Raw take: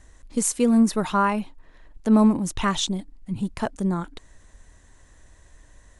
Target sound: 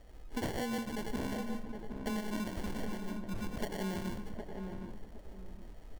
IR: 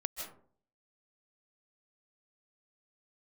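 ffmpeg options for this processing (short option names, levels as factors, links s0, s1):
-filter_complex "[0:a]highshelf=f=9000:g=10.5,asettb=1/sr,asplit=3[s0][s1][s2];[s0]atrim=end=0.784[s3];[s1]atrim=start=0.78:end=3.47,asetpts=PTS-STARTPTS,afade=t=in:d=0.004:c=qsin,afade=t=out:st=2.686:d=0.004:c=qsin,acrossover=split=320|6400[s4][s5][s6];[s4]acompressor=threshold=0.0794:ratio=4[s7];[s5]acompressor=threshold=0.0316:ratio=4[s8];[s6]acompressor=threshold=0.00794:ratio=4[s9];[s7][s8][s9]amix=inputs=3:normalize=0[s10];[s2]atrim=start=3.466[s11];[s3][s10]acrossfade=d=0.004:c1=hsin:c2=qsin[s12];[s12][s11]acrossfade=d=0.004:c1=qsin:c2=hsin,equalizer=f=160:t=o:w=0.56:g=-12[s13];[1:a]atrim=start_sample=2205,asetrate=70560,aresample=44100[s14];[s13][s14]afir=irnorm=-1:irlink=0,acompressor=threshold=0.0178:ratio=6,acrusher=samples=35:mix=1:aa=0.000001,asplit=2[s15][s16];[s16]adelay=764,lowpass=f=970:p=1,volume=0.596,asplit=2[s17][s18];[s18]adelay=764,lowpass=f=970:p=1,volume=0.29,asplit=2[s19][s20];[s20]adelay=764,lowpass=f=970:p=1,volume=0.29,asplit=2[s21][s22];[s22]adelay=764,lowpass=f=970:p=1,volume=0.29[s23];[s15][s17][s19][s21][s23]amix=inputs=5:normalize=0,volume=1.12"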